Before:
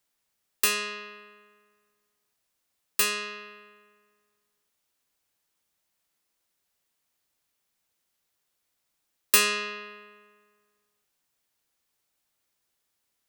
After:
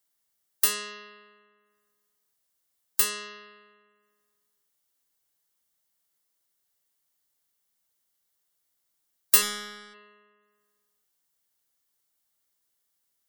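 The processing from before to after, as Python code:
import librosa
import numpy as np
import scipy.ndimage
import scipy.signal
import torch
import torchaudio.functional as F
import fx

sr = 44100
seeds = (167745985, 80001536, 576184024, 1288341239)

y = fx.lower_of_two(x, sr, delay_ms=0.56, at=(9.41, 9.93), fade=0.02)
y = fx.spec_gate(y, sr, threshold_db=-30, keep='strong')
y = fx.high_shelf(y, sr, hz=7000.0, db=8.5)
y = fx.notch(y, sr, hz=2500.0, q=8.7)
y = y * 10.0 ** (-4.5 / 20.0)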